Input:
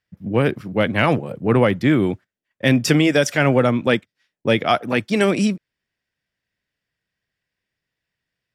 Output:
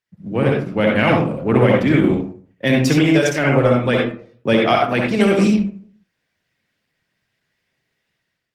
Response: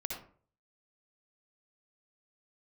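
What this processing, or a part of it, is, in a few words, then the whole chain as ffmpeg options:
far-field microphone of a smart speaker: -filter_complex "[0:a]asplit=3[s0][s1][s2];[s0]afade=t=out:st=1.62:d=0.02[s3];[s1]equalizer=f=64:w=4.7:g=2,afade=t=in:st=1.62:d=0.02,afade=t=out:st=2.09:d=0.02[s4];[s2]afade=t=in:st=2.09:d=0.02[s5];[s3][s4][s5]amix=inputs=3:normalize=0[s6];[1:a]atrim=start_sample=2205[s7];[s6][s7]afir=irnorm=-1:irlink=0,highpass=f=96:w=0.5412,highpass=f=96:w=1.3066,dynaudnorm=f=180:g=5:m=3.98,volume=0.841" -ar 48000 -c:a libopus -b:a 16k

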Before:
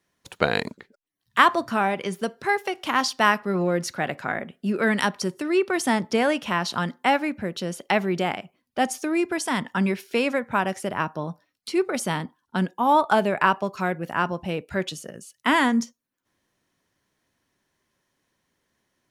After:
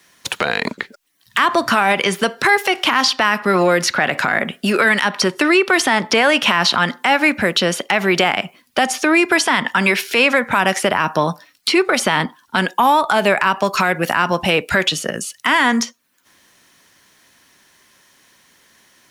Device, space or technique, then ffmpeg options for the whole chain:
mastering chain: -filter_complex "[0:a]equalizer=f=220:t=o:w=1.1:g=3.5,acrossover=split=370|3900[s0][s1][s2];[s0]acompressor=threshold=0.0251:ratio=4[s3];[s1]acompressor=threshold=0.0631:ratio=4[s4];[s2]acompressor=threshold=0.00282:ratio=4[s5];[s3][s4][s5]amix=inputs=3:normalize=0,acompressor=threshold=0.0447:ratio=1.5,asoftclip=type=tanh:threshold=0.237,tiltshelf=f=740:g=-7,asoftclip=type=hard:threshold=0.266,alimiter=level_in=10.6:limit=0.891:release=50:level=0:latency=1,volume=0.668"

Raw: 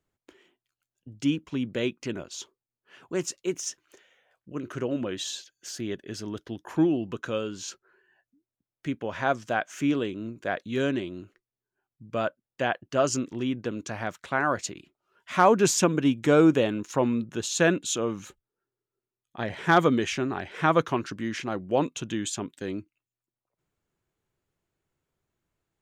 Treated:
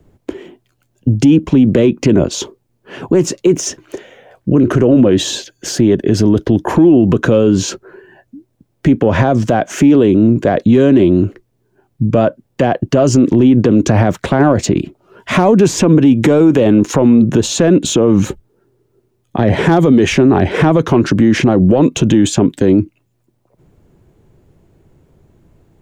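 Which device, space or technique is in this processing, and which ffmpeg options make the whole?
mastering chain: -filter_complex "[0:a]equalizer=f=1300:t=o:w=0.55:g=-3.5,acrossover=split=260|820|2600|6500[s0][s1][s2][s3][s4];[s0]acompressor=threshold=0.0158:ratio=4[s5];[s1]acompressor=threshold=0.0447:ratio=4[s6];[s2]acompressor=threshold=0.0224:ratio=4[s7];[s3]acompressor=threshold=0.0126:ratio=4[s8];[s4]acompressor=threshold=0.00794:ratio=4[s9];[s5][s6][s7][s8][s9]amix=inputs=5:normalize=0,acompressor=threshold=0.0316:ratio=3,asoftclip=type=tanh:threshold=0.0708,tiltshelf=f=890:g=9,alimiter=level_in=21.1:limit=0.891:release=50:level=0:latency=1,volume=0.891"

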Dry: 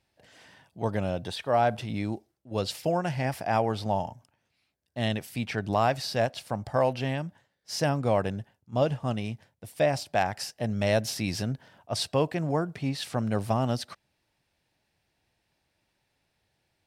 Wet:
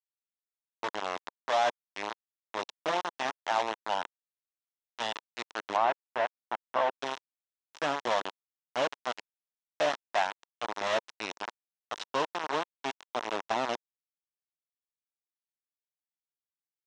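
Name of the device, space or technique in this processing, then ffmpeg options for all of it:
hand-held game console: -filter_complex "[0:a]acrusher=bits=3:mix=0:aa=0.000001,highpass=420,equalizer=f=520:t=q:w=4:g=-4,equalizer=f=960:t=q:w=4:g=5,equalizer=f=2300:t=q:w=4:g=-4,equalizer=f=4600:t=q:w=4:g=-8,lowpass=f=5400:w=0.5412,lowpass=f=5400:w=1.3066,asettb=1/sr,asplit=3[s0][s1][s2];[s0]atrim=end=5.764[s3];[s1]atrim=start=5.76:end=6.95,asetpts=PTS-STARTPTS,afade=t=in:d=0.004:c=qsin,afade=t=out:st=1.186:d=0.004:c=qsin,acrossover=split=2900[s4][s5];[s5]acompressor=threshold=0.00224:ratio=4:attack=1:release=60[s6];[s4][s6]amix=inputs=2:normalize=0[s7];[s2]atrim=start=6.946[s8];[s3][s7]acrossfade=d=0.004:c1=hsin:c2=qsin[s9];[s9][s8]acrossfade=d=0.004:c1=qsin:c2=hsin,volume=0.708"

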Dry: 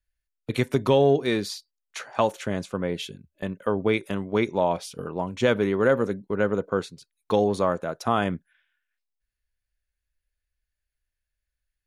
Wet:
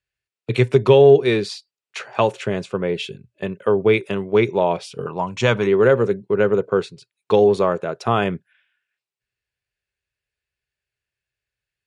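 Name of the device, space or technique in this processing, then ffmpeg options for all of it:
car door speaker: -filter_complex "[0:a]highpass=110,equalizer=f=120:t=q:w=4:g=10,equalizer=f=270:t=q:w=4:g=-6,equalizer=f=400:t=q:w=4:g=8,equalizer=f=2600:t=q:w=4:g=6,equalizer=f=6300:t=q:w=4:g=-5,lowpass=f=8500:w=0.5412,lowpass=f=8500:w=1.3066,asettb=1/sr,asplit=3[s0][s1][s2];[s0]atrim=end=5.064[s3];[s1]atrim=start=5.06:end=5.67,asetpts=PTS-STARTPTS,afade=t=in:d=0.004:c=qsin,afade=t=out:st=0.606:d=0.004:c=qsin,equalizer=f=400:t=o:w=0.67:g=-8,equalizer=f=1000:t=o:w=0.67:g=6,equalizer=f=6300:t=o:w=0.67:g=9[s4];[s2]atrim=start=5.666[s5];[s3][s4]acrossfade=d=0.004:c1=hsin:c2=qsin[s6];[s6][s5]acrossfade=d=0.004:c1=qsin:c2=hsin,volume=1.5"

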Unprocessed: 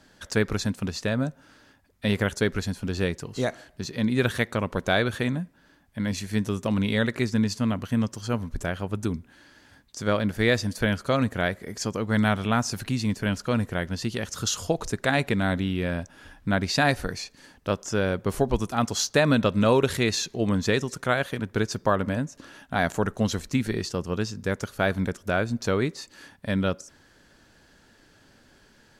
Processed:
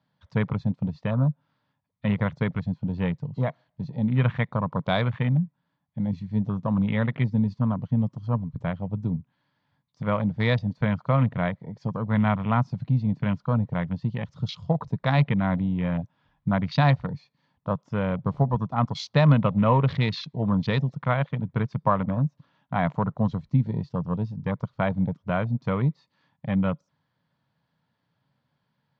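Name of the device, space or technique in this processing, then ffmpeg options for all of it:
kitchen radio: -af "afwtdn=0.0224,highpass=230,equalizer=f=270:t=q:w=4:g=6,equalizer=f=380:t=q:w=4:g=-8,equalizer=f=1000:t=q:w=4:g=7,equalizer=f=1600:t=q:w=4:g=-8,equalizer=f=2700:t=q:w=4:g=-5,lowpass=f=3900:w=0.5412,lowpass=f=3900:w=1.3066,lowshelf=f=200:t=q:w=3:g=11.5"

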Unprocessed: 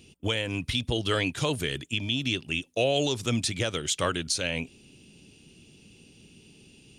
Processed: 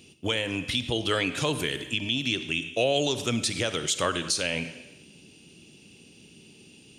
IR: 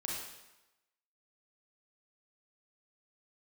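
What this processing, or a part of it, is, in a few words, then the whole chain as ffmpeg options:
ducked reverb: -filter_complex "[0:a]highpass=f=160:p=1,asplit=3[s0][s1][s2];[1:a]atrim=start_sample=2205[s3];[s1][s3]afir=irnorm=-1:irlink=0[s4];[s2]apad=whole_len=307970[s5];[s4][s5]sidechaincompress=threshold=0.0355:ratio=8:attack=5.3:release=116,volume=0.473[s6];[s0][s6]amix=inputs=2:normalize=0"

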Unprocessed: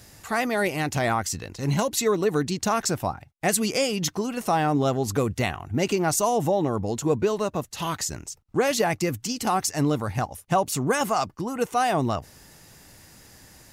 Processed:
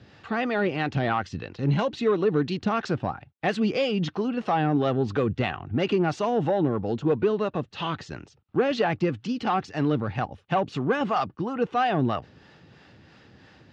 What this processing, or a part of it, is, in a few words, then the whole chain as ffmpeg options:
guitar amplifier with harmonic tremolo: -filter_complex "[0:a]acrossover=split=470[s0][s1];[s0]aeval=exprs='val(0)*(1-0.5/2+0.5/2*cos(2*PI*3*n/s))':c=same[s2];[s1]aeval=exprs='val(0)*(1-0.5/2-0.5/2*cos(2*PI*3*n/s))':c=same[s3];[s2][s3]amix=inputs=2:normalize=0,asoftclip=type=tanh:threshold=0.141,highpass=100,equalizer=f=650:t=q:w=4:g=-4,equalizer=f=980:t=q:w=4:g=-5,equalizer=f=2100:t=q:w=4:g=-6,lowpass=f=3500:w=0.5412,lowpass=f=3500:w=1.3066,volume=1.68"

